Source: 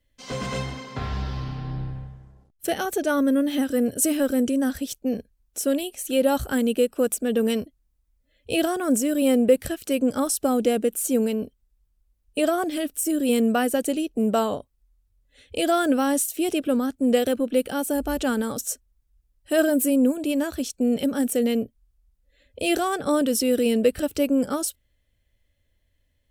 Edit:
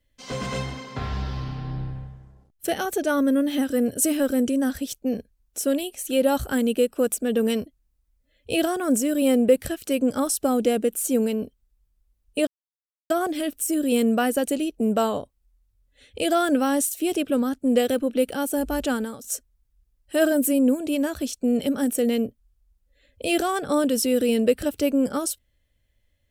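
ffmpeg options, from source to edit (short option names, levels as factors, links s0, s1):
-filter_complex "[0:a]asplit=3[s0][s1][s2];[s0]atrim=end=12.47,asetpts=PTS-STARTPTS,afade=t=out:st=12.466:d=0.004:c=hsin,apad=pad_dur=0.63[s3];[s1]atrim=start=12.47:end=18.61,asetpts=PTS-STARTPTS,afade=t=in:d=0.004:c=hsin,afade=t=out:st=5.79:d=0.35:silence=0.16788[s4];[s2]atrim=start=18.61,asetpts=PTS-STARTPTS,afade=t=in:d=0.004:c=hsin:silence=0.16788[s5];[s3][s4][s5]concat=n=3:v=0:a=1"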